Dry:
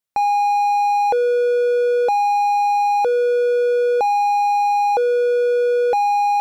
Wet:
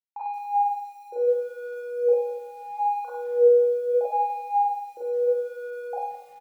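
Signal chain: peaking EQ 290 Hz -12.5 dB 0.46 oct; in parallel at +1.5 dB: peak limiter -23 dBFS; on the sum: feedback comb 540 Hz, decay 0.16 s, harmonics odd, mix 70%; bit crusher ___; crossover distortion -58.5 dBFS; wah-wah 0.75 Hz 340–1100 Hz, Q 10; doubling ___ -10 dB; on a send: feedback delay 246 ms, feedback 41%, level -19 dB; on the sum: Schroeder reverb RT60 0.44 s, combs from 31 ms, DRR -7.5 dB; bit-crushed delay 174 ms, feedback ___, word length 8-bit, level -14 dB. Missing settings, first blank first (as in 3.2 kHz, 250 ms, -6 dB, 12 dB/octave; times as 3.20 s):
11-bit, 50 ms, 35%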